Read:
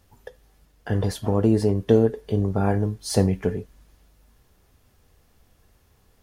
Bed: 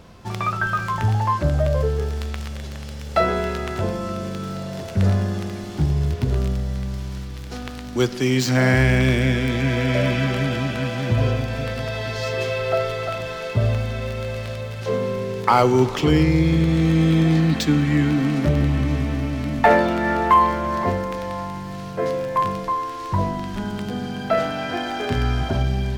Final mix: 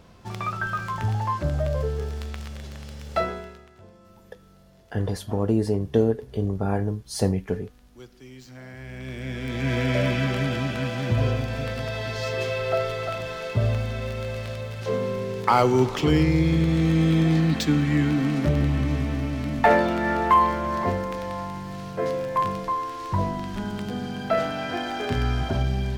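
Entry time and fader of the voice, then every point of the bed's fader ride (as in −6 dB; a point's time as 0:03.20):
4.05 s, −3.0 dB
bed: 0:03.19 −5.5 dB
0:03.71 −25.5 dB
0:08.74 −25.5 dB
0:09.73 −3 dB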